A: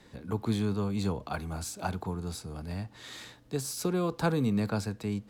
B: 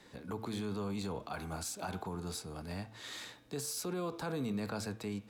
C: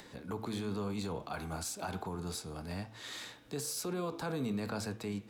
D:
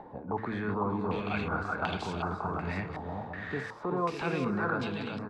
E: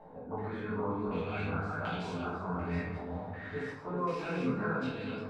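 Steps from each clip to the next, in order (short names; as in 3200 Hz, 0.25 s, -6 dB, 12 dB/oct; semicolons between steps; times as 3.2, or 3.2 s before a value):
low shelf 170 Hz -10 dB; de-hum 111.5 Hz, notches 35; limiter -29.5 dBFS, peak gain reduction 11 dB
flange 1 Hz, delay 6.4 ms, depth 7.3 ms, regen -87%; upward compressor, threshold -54 dBFS; gain +5.5 dB
ending faded out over 0.77 s; bouncing-ball echo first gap 0.38 s, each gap 0.6×, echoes 5; stepped low-pass 2.7 Hz 830–3100 Hz; gain +3 dB
chorus 0.53 Hz, delay 18 ms, depth 5.7 ms; shoebox room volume 72 m³, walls mixed, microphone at 1.6 m; gain -8.5 dB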